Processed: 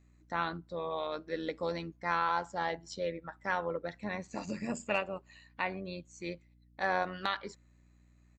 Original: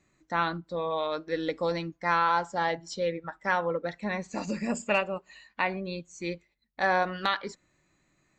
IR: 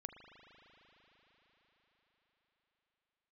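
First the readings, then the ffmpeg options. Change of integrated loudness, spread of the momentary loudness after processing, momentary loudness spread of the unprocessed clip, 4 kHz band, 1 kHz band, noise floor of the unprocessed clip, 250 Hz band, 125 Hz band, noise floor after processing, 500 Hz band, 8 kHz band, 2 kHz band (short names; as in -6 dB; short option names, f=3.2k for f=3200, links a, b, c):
-6.0 dB, 11 LU, 11 LU, -6.0 dB, -6.0 dB, -71 dBFS, -6.0 dB, -6.0 dB, -64 dBFS, -6.0 dB, -6.0 dB, -6.0 dB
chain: -af "aresample=32000,aresample=44100,tremolo=f=90:d=0.462,aeval=exprs='val(0)+0.00126*(sin(2*PI*60*n/s)+sin(2*PI*2*60*n/s)/2+sin(2*PI*3*60*n/s)/3+sin(2*PI*4*60*n/s)/4+sin(2*PI*5*60*n/s)/5)':c=same,volume=-4dB"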